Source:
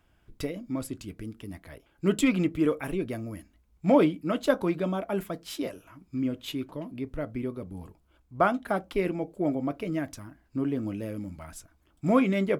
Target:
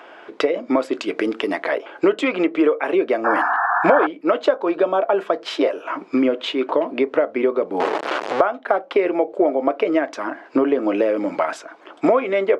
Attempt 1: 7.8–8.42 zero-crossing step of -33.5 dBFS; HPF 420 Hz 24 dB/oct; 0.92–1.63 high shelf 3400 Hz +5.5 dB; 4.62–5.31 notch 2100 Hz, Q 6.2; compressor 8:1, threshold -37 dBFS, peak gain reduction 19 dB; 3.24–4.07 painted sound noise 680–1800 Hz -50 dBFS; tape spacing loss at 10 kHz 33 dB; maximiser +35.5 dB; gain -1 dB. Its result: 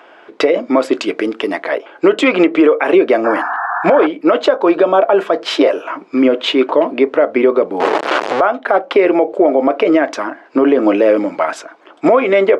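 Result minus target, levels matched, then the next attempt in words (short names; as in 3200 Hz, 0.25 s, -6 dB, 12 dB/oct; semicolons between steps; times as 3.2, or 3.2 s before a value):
compressor: peak gain reduction -9.5 dB
7.8–8.42 zero-crossing step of -33.5 dBFS; HPF 420 Hz 24 dB/oct; 0.92–1.63 high shelf 3400 Hz +5.5 dB; 4.62–5.31 notch 2100 Hz, Q 6.2; compressor 8:1, threshold -48 dBFS, peak gain reduction 28.5 dB; 3.24–4.07 painted sound noise 680–1800 Hz -50 dBFS; tape spacing loss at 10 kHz 33 dB; maximiser +35.5 dB; gain -1 dB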